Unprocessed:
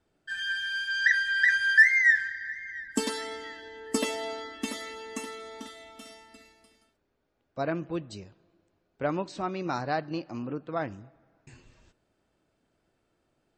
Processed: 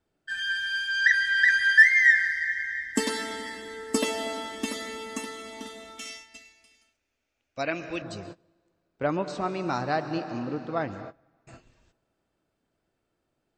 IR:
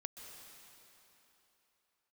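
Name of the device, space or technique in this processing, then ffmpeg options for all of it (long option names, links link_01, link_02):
keyed gated reverb: -filter_complex "[0:a]asplit=3[link_01][link_02][link_03];[1:a]atrim=start_sample=2205[link_04];[link_02][link_04]afir=irnorm=-1:irlink=0[link_05];[link_03]apad=whole_len=598690[link_06];[link_05][link_06]sidechaingate=range=-26dB:threshold=-50dB:ratio=16:detection=peak,volume=6dB[link_07];[link_01][link_07]amix=inputs=2:normalize=0,asettb=1/sr,asplit=3[link_08][link_09][link_10];[link_08]atrim=end=5.984[link_11];[link_09]atrim=start=5.98:end=8.02,asetpts=PTS-STARTPTS,afade=type=in:duration=0.004:curve=qsin,afade=type=out:start_time=2.036:duration=0.004:curve=qsin,equalizer=frequency=160:width_type=o:width=0.67:gain=-10,equalizer=frequency=400:width_type=o:width=0.67:gain=-6,equalizer=frequency=1000:width_type=o:width=0.67:gain=-4,equalizer=frequency=2500:width_type=o:width=0.67:gain=12,equalizer=frequency=6300:width_type=o:width=0.67:gain=12[link_12];[link_10]atrim=start=8.016[link_13];[link_11][link_12]acrossfade=duration=0.004:curve1=hsin:curve2=qsin[link_14];[link_14][link_13]acrossfade=duration=0.004:curve1=qsin:curve2=hsin,volume=-4.5dB"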